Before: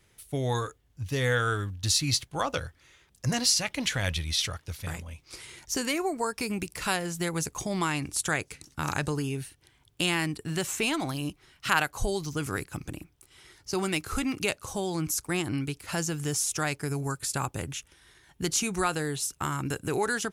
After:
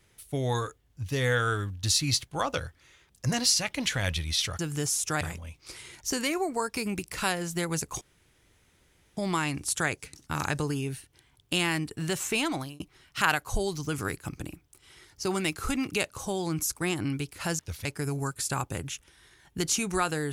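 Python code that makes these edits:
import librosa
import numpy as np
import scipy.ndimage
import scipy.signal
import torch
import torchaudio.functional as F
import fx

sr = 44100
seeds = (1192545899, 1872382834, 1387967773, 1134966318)

y = fx.edit(x, sr, fx.swap(start_s=4.59, length_s=0.26, other_s=16.07, other_length_s=0.62),
    fx.insert_room_tone(at_s=7.65, length_s=1.16),
    fx.fade_out_span(start_s=11.02, length_s=0.26), tone=tone)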